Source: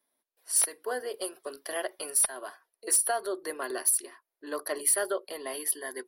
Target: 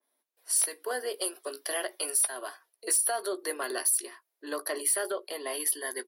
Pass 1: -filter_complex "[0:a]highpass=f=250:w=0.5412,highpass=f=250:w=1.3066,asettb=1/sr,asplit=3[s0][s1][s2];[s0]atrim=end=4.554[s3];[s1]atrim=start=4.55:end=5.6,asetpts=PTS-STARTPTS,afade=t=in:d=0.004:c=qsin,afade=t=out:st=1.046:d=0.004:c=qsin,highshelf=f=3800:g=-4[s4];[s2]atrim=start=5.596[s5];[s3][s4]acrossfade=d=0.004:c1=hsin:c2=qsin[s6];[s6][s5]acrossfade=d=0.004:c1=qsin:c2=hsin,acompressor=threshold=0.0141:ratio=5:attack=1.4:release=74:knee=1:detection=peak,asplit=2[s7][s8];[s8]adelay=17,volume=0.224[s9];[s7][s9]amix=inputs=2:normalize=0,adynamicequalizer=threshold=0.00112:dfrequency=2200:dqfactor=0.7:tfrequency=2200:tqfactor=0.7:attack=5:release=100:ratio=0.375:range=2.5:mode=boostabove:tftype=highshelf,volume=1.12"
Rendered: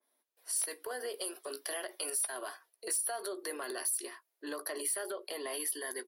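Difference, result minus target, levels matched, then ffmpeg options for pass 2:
compression: peak gain reduction +7.5 dB
-filter_complex "[0:a]highpass=f=250:w=0.5412,highpass=f=250:w=1.3066,asettb=1/sr,asplit=3[s0][s1][s2];[s0]atrim=end=4.554[s3];[s1]atrim=start=4.55:end=5.6,asetpts=PTS-STARTPTS,afade=t=in:d=0.004:c=qsin,afade=t=out:st=1.046:d=0.004:c=qsin,highshelf=f=3800:g=-4[s4];[s2]atrim=start=5.596[s5];[s3][s4]acrossfade=d=0.004:c1=hsin:c2=qsin[s6];[s6][s5]acrossfade=d=0.004:c1=qsin:c2=hsin,acompressor=threshold=0.0422:ratio=5:attack=1.4:release=74:knee=1:detection=peak,asplit=2[s7][s8];[s8]adelay=17,volume=0.224[s9];[s7][s9]amix=inputs=2:normalize=0,adynamicequalizer=threshold=0.00112:dfrequency=2200:dqfactor=0.7:tfrequency=2200:tqfactor=0.7:attack=5:release=100:ratio=0.375:range=2.5:mode=boostabove:tftype=highshelf,volume=1.12"

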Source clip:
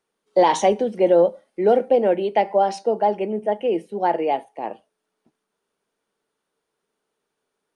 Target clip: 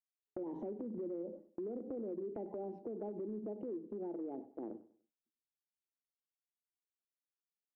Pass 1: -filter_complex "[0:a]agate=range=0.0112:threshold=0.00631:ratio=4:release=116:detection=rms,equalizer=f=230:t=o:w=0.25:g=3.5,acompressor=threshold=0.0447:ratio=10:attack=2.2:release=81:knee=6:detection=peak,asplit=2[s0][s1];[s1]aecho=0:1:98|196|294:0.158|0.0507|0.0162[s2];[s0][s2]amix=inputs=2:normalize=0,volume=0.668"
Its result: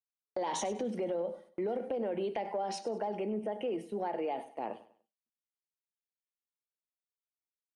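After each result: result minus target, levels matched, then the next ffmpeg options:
compression: peak gain reduction -9.5 dB; 250 Hz band -4.5 dB
-filter_complex "[0:a]agate=range=0.0112:threshold=0.00631:ratio=4:release=116:detection=rms,equalizer=f=230:t=o:w=0.25:g=3.5,acompressor=threshold=0.0158:ratio=10:attack=2.2:release=81:knee=6:detection=peak,asplit=2[s0][s1];[s1]aecho=0:1:98|196|294:0.158|0.0507|0.0162[s2];[s0][s2]amix=inputs=2:normalize=0,volume=0.668"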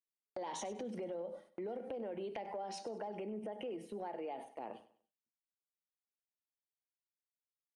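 250 Hz band -4.0 dB
-filter_complex "[0:a]agate=range=0.0112:threshold=0.00631:ratio=4:release=116:detection=rms,lowpass=f=330:t=q:w=3.7,equalizer=f=230:t=o:w=0.25:g=3.5,acompressor=threshold=0.0158:ratio=10:attack=2.2:release=81:knee=6:detection=peak,asplit=2[s0][s1];[s1]aecho=0:1:98|196|294:0.158|0.0507|0.0162[s2];[s0][s2]amix=inputs=2:normalize=0,volume=0.668"

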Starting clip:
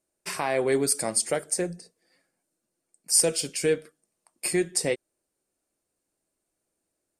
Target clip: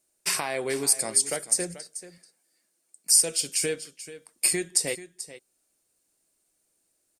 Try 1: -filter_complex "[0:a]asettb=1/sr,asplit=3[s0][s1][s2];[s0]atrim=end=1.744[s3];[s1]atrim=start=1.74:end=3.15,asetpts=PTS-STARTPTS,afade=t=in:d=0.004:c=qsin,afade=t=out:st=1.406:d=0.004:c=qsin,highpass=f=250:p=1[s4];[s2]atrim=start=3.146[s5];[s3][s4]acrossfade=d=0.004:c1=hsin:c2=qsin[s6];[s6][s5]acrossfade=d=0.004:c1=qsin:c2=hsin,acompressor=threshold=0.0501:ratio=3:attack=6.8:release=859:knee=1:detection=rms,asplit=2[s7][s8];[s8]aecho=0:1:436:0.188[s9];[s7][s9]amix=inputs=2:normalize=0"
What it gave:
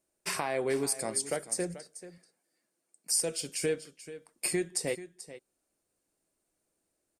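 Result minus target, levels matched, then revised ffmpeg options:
2 kHz band +3.0 dB
-filter_complex "[0:a]asettb=1/sr,asplit=3[s0][s1][s2];[s0]atrim=end=1.744[s3];[s1]atrim=start=1.74:end=3.15,asetpts=PTS-STARTPTS,afade=t=in:d=0.004:c=qsin,afade=t=out:st=1.406:d=0.004:c=qsin,highpass=f=250:p=1[s4];[s2]atrim=start=3.146[s5];[s3][s4]acrossfade=d=0.004:c1=hsin:c2=qsin[s6];[s6][s5]acrossfade=d=0.004:c1=qsin:c2=hsin,acompressor=threshold=0.0501:ratio=3:attack=6.8:release=859:knee=1:detection=rms,highshelf=f=2200:g=10.5,asplit=2[s7][s8];[s8]aecho=0:1:436:0.188[s9];[s7][s9]amix=inputs=2:normalize=0"

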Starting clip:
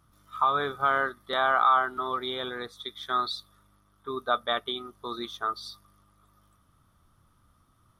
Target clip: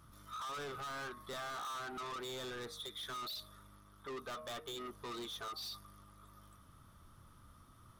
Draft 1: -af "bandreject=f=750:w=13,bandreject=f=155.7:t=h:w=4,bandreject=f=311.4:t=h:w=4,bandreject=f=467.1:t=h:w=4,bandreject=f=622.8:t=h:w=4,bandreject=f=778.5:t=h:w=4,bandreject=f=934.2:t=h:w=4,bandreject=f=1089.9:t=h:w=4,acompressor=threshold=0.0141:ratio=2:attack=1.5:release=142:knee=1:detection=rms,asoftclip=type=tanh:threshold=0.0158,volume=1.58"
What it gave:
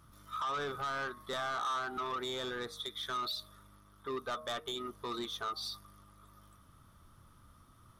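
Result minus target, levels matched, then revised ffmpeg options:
saturation: distortion -5 dB
-af "bandreject=f=750:w=13,bandreject=f=155.7:t=h:w=4,bandreject=f=311.4:t=h:w=4,bandreject=f=467.1:t=h:w=4,bandreject=f=622.8:t=h:w=4,bandreject=f=778.5:t=h:w=4,bandreject=f=934.2:t=h:w=4,bandreject=f=1089.9:t=h:w=4,acompressor=threshold=0.0141:ratio=2:attack=1.5:release=142:knee=1:detection=rms,asoftclip=type=tanh:threshold=0.00531,volume=1.58"

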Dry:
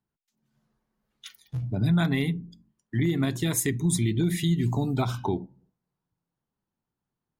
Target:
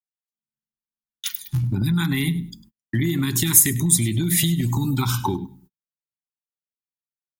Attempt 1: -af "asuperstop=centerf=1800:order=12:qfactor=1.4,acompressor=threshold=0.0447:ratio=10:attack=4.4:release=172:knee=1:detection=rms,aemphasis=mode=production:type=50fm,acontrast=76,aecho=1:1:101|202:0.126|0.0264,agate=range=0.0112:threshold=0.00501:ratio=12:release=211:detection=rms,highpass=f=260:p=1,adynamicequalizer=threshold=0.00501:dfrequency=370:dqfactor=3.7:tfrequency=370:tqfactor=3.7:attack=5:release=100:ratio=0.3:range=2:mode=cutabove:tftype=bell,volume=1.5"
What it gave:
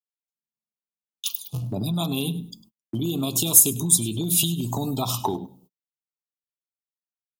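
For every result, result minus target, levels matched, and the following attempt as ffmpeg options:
2 kHz band -10.5 dB; 250 Hz band -2.5 dB
-af "asuperstop=centerf=570:order=12:qfactor=1.4,acompressor=threshold=0.0447:ratio=10:attack=4.4:release=172:knee=1:detection=rms,aemphasis=mode=production:type=50fm,acontrast=76,aecho=1:1:101|202:0.126|0.0264,agate=range=0.0112:threshold=0.00501:ratio=12:release=211:detection=rms,highpass=f=260:p=1,adynamicequalizer=threshold=0.00501:dfrequency=370:dqfactor=3.7:tfrequency=370:tqfactor=3.7:attack=5:release=100:ratio=0.3:range=2:mode=cutabove:tftype=bell,volume=1.5"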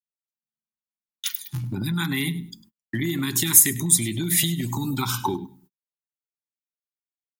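250 Hz band -2.5 dB
-af "asuperstop=centerf=570:order=12:qfactor=1.4,acompressor=threshold=0.0447:ratio=10:attack=4.4:release=172:knee=1:detection=rms,aemphasis=mode=production:type=50fm,acontrast=76,aecho=1:1:101|202:0.126|0.0264,agate=range=0.0112:threshold=0.00501:ratio=12:release=211:detection=rms,adynamicequalizer=threshold=0.00501:dfrequency=370:dqfactor=3.7:tfrequency=370:tqfactor=3.7:attack=5:release=100:ratio=0.3:range=2:mode=cutabove:tftype=bell,volume=1.5"

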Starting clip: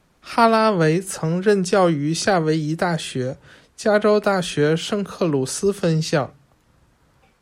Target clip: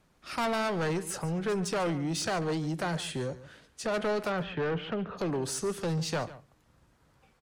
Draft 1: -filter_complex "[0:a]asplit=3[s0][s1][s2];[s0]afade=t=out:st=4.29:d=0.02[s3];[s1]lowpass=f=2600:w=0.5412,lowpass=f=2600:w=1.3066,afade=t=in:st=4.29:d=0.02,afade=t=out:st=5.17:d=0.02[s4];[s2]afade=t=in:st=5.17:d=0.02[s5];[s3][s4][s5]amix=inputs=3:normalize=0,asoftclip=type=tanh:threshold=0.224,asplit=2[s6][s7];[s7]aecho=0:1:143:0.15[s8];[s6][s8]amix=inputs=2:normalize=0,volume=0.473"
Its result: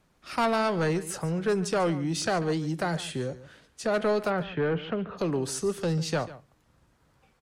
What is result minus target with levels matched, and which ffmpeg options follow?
saturation: distortion -6 dB
-filter_complex "[0:a]asplit=3[s0][s1][s2];[s0]afade=t=out:st=4.29:d=0.02[s3];[s1]lowpass=f=2600:w=0.5412,lowpass=f=2600:w=1.3066,afade=t=in:st=4.29:d=0.02,afade=t=out:st=5.17:d=0.02[s4];[s2]afade=t=in:st=5.17:d=0.02[s5];[s3][s4][s5]amix=inputs=3:normalize=0,asoftclip=type=tanh:threshold=0.1,asplit=2[s6][s7];[s7]aecho=0:1:143:0.15[s8];[s6][s8]amix=inputs=2:normalize=0,volume=0.473"

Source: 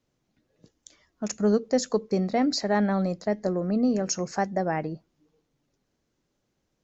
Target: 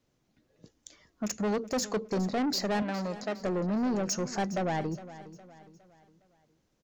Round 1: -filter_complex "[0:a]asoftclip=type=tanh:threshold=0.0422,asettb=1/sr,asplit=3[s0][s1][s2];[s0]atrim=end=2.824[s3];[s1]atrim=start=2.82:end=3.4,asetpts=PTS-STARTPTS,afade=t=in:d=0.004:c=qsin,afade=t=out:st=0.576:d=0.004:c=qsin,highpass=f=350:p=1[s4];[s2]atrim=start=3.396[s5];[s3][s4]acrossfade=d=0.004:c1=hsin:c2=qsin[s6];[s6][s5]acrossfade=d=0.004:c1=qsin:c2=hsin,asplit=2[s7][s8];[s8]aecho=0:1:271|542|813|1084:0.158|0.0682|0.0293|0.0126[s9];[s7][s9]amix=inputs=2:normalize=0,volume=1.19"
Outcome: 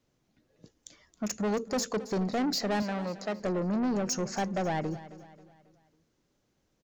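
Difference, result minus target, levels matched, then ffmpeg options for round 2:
echo 140 ms early
-filter_complex "[0:a]asoftclip=type=tanh:threshold=0.0422,asettb=1/sr,asplit=3[s0][s1][s2];[s0]atrim=end=2.824[s3];[s1]atrim=start=2.82:end=3.4,asetpts=PTS-STARTPTS,afade=t=in:d=0.004:c=qsin,afade=t=out:st=0.576:d=0.004:c=qsin,highpass=f=350:p=1[s4];[s2]atrim=start=3.396[s5];[s3][s4]acrossfade=d=0.004:c1=hsin:c2=qsin[s6];[s6][s5]acrossfade=d=0.004:c1=qsin:c2=hsin,asplit=2[s7][s8];[s8]aecho=0:1:411|822|1233|1644:0.158|0.0682|0.0293|0.0126[s9];[s7][s9]amix=inputs=2:normalize=0,volume=1.19"

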